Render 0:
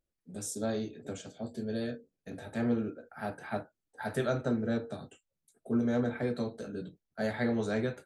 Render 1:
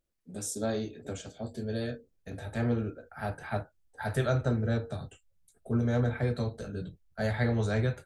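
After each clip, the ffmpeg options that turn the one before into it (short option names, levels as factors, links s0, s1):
-af "asubboost=boost=10:cutoff=81,volume=1.33"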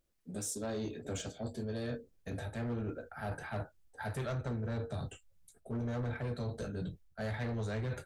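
-af "asoftclip=type=hard:threshold=0.0562,areverse,acompressor=threshold=0.0141:ratio=6,areverse,asoftclip=type=tanh:threshold=0.0224,volume=1.5"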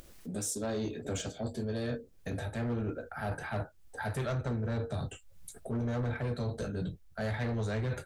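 -af "acompressor=mode=upward:threshold=0.0112:ratio=2.5,volume=1.5"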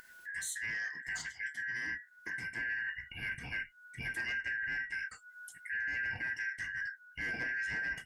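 -af "afftfilt=real='real(if(lt(b,272),68*(eq(floor(b/68),0)*1+eq(floor(b/68),1)*0+eq(floor(b/68),2)*3+eq(floor(b/68),3)*2)+mod(b,68),b),0)':imag='imag(if(lt(b,272),68*(eq(floor(b/68),0)*1+eq(floor(b/68),1)*0+eq(floor(b/68),2)*3+eq(floor(b/68),3)*2)+mod(b,68),b),0)':win_size=2048:overlap=0.75,volume=0.631"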